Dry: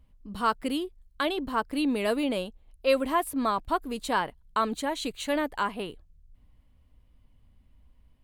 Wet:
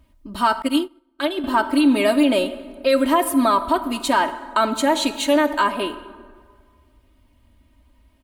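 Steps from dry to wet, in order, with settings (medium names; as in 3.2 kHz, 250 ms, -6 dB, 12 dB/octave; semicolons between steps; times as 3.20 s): high-pass 54 Hz 6 dB/octave; bass shelf 140 Hz -6.5 dB; comb 3.2 ms, depth 90%; peak limiter -17 dBFS, peak gain reduction 6.5 dB; plate-style reverb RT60 1.8 s, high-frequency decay 0.55×, DRR 11 dB; 0.62–1.44 s: upward expansion 2.5:1, over -42 dBFS; trim +8.5 dB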